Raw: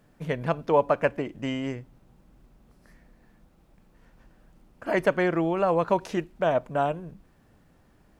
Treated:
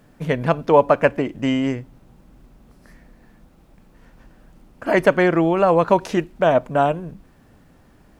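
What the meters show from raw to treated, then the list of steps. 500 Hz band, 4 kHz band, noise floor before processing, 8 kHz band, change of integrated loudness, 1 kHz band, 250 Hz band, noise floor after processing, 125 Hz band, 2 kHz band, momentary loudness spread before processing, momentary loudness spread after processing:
+7.5 dB, +7.5 dB, -61 dBFS, no reading, +7.5 dB, +7.5 dB, +8.5 dB, -53 dBFS, +7.5 dB, +7.5 dB, 11 LU, 10 LU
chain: peaking EQ 260 Hz +3.5 dB 0.2 oct; trim +7.5 dB

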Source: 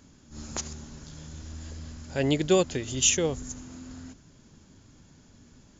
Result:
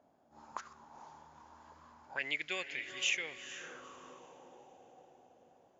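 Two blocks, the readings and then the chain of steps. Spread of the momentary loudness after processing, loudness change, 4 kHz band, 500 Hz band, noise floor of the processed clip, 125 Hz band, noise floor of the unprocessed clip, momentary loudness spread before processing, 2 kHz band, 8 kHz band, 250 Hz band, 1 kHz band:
24 LU, -11.5 dB, -7.5 dB, -21.0 dB, -69 dBFS, -31.0 dB, -57 dBFS, 21 LU, +0.5 dB, no reading, -25.0 dB, -7.5 dB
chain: echo that smears into a reverb 468 ms, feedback 50%, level -9 dB; auto-wah 670–2200 Hz, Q 6.4, up, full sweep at -25 dBFS; trim +6.5 dB

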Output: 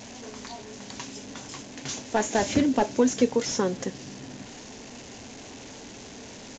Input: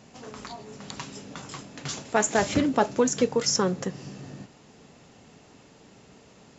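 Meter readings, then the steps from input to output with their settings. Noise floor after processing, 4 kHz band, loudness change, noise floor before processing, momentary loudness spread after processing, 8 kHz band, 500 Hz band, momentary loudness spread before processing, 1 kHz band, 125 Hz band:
-44 dBFS, -2.5 dB, -1.5 dB, -54 dBFS, 19 LU, no reading, -0.5 dB, 18 LU, -1.5 dB, -3.0 dB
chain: one-bit delta coder 64 kbps, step -37 dBFS; resampled via 16 kHz; graphic EQ with 31 bands 160 Hz -11 dB, 250 Hz +5 dB, 1.25 kHz -8 dB, 6.3 kHz +5 dB

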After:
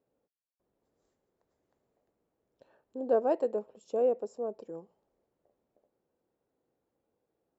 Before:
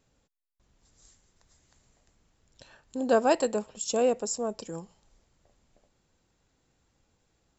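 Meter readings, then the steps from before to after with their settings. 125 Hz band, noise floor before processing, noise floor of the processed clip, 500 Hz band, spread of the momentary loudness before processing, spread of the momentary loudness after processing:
under -10 dB, -73 dBFS, -85 dBFS, -2.5 dB, 17 LU, 18 LU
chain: band-pass filter 460 Hz, Q 1.5; trim -1.5 dB

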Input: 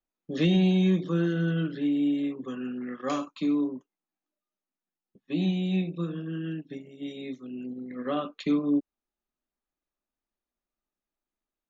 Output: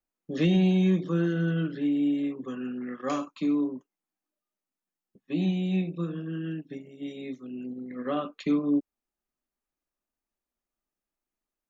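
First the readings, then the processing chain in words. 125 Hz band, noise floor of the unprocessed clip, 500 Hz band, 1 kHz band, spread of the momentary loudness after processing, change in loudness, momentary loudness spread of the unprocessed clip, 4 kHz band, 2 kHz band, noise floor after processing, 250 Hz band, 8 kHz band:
0.0 dB, under -85 dBFS, 0.0 dB, 0.0 dB, 14 LU, 0.0 dB, 14 LU, -3.0 dB, -0.5 dB, under -85 dBFS, 0.0 dB, no reading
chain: peaking EQ 3.7 kHz -4 dB 0.57 oct

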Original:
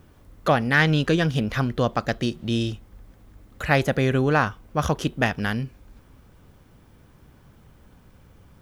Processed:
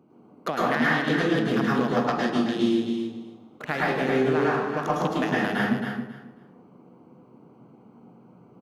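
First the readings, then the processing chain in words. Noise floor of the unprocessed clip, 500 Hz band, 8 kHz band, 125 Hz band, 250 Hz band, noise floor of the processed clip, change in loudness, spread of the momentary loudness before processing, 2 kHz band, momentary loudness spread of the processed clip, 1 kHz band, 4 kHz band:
-54 dBFS, 0.0 dB, -5.0 dB, -8.0 dB, +1.5 dB, -54 dBFS, -1.5 dB, 10 LU, -2.0 dB, 12 LU, 0.0 dB, -3.5 dB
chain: local Wiener filter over 25 samples; high-pass 180 Hz 24 dB/octave; band-stop 560 Hz, Q 12; compression, threshold -26 dBFS, peak gain reduction 12.5 dB; feedback delay 271 ms, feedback 18%, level -7 dB; plate-style reverb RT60 0.81 s, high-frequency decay 0.55×, pre-delay 95 ms, DRR -6 dB

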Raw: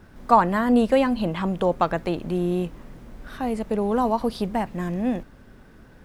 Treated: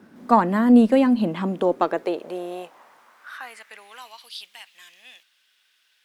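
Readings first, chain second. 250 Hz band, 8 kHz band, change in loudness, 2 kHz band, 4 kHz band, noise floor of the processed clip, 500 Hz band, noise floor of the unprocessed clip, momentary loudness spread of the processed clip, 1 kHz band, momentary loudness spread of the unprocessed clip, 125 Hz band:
+3.0 dB, -1.5 dB, +3.5 dB, -1.5 dB, 0.0 dB, -66 dBFS, -1.0 dB, -50 dBFS, 23 LU, -2.0 dB, 10 LU, -4.5 dB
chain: high-pass sweep 230 Hz -> 3.1 kHz, 1.41–4.26 s; Chebyshev shaper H 2 -26 dB, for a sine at -1 dBFS; trim -2 dB

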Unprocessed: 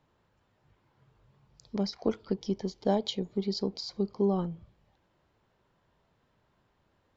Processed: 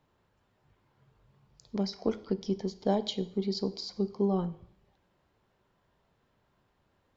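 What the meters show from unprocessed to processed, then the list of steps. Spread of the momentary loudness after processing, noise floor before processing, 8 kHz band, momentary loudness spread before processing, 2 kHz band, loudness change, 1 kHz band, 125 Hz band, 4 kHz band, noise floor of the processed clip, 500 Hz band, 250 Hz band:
6 LU, -73 dBFS, no reading, 6 LU, -1.0 dB, -0.5 dB, -0.5 dB, 0.0 dB, -1.0 dB, -73 dBFS, -0.5 dB, 0.0 dB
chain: two-slope reverb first 0.61 s, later 1.6 s, from -25 dB, DRR 13 dB; trim -1 dB

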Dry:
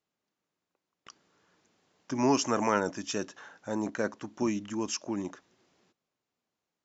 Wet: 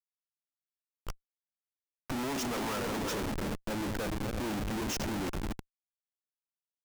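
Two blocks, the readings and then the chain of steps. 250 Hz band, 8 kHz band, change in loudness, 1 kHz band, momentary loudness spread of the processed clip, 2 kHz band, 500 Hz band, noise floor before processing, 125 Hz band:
-3.5 dB, no reading, -3.5 dB, -4.5 dB, 15 LU, -0.5 dB, -5.0 dB, under -85 dBFS, +3.5 dB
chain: backward echo that repeats 166 ms, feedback 68%, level -11 dB; Schmitt trigger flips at -38 dBFS

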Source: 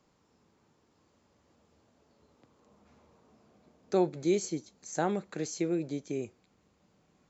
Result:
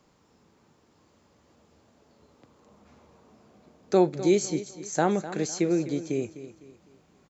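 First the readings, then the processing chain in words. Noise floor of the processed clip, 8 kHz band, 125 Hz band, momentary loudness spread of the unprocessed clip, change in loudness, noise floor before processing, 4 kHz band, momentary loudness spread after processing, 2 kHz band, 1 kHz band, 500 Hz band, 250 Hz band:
-64 dBFS, no reading, +6.0 dB, 10 LU, +6.0 dB, -71 dBFS, +6.0 dB, 11 LU, +6.0 dB, +6.0 dB, +6.0 dB, +6.0 dB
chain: feedback delay 253 ms, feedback 37%, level -14 dB; trim +6 dB

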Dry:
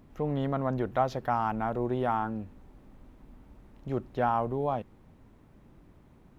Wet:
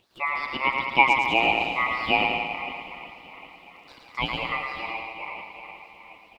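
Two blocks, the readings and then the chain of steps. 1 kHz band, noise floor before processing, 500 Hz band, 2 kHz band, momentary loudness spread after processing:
+5.5 dB, -58 dBFS, -2.0 dB, +20.0 dB, 21 LU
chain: echo that smears into a reverb 505 ms, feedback 45%, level -13 dB; LFO high-pass sine 2.6 Hz 460–2900 Hz; bouncing-ball echo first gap 110 ms, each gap 0.8×, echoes 5; ring modulator 1.6 kHz; trim +6 dB

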